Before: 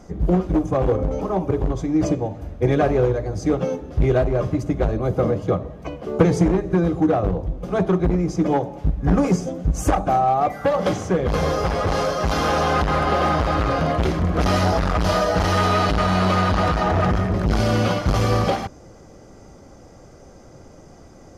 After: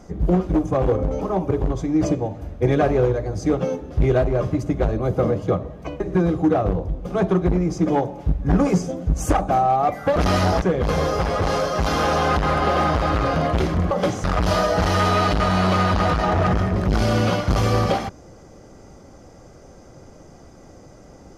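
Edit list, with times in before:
6.00–6.58 s: delete
10.74–11.07 s: swap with 14.36–14.82 s

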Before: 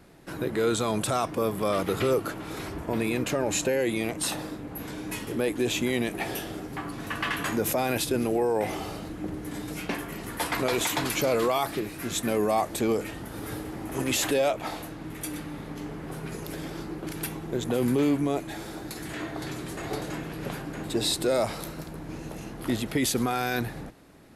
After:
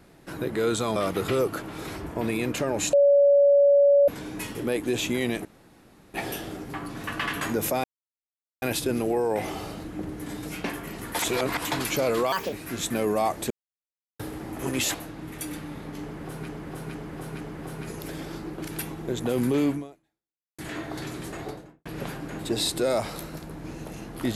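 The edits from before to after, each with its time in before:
0.96–1.68 s: delete
3.65–4.80 s: bleep 567 Hz -14 dBFS
6.17 s: insert room tone 0.69 s
7.87 s: insert silence 0.78 s
10.44–10.90 s: reverse
11.57–11.85 s: speed 137%
12.83–13.52 s: mute
14.27–14.77 s: delete
15.85–16.31 s: loop, 4 plays
18.18–19.03 s: fade out exponential
19.70–20.30 s: studio fade out

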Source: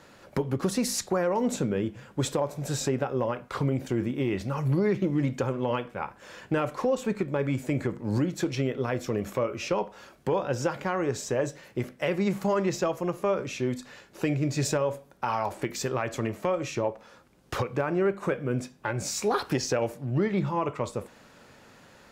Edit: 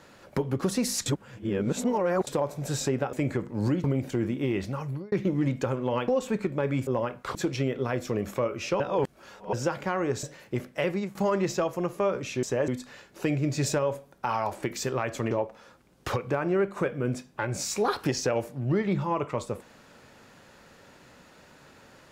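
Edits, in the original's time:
1.06–2.27 s: reverse
3.13–3.61 s: swap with 7.63–8.34 s
4.41–4.89 s: fade out
5.85–6.84 s: delete
9.79–10.52 s: reverse
11.22–11.47 s: move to 13.67 s
12.12–12.39 s: fade out, to -18 dB
16.30–16.77 s: delete

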